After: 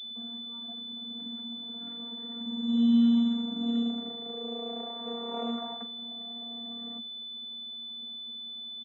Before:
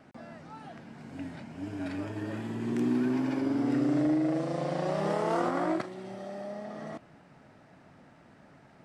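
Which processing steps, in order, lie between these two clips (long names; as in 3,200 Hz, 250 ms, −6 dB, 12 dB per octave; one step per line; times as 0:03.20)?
channel vocoder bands 32, saw 234 Hz
double-tracking delay 18 ms −12 dB
switching amplifier with a slow clock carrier 3,500 Hz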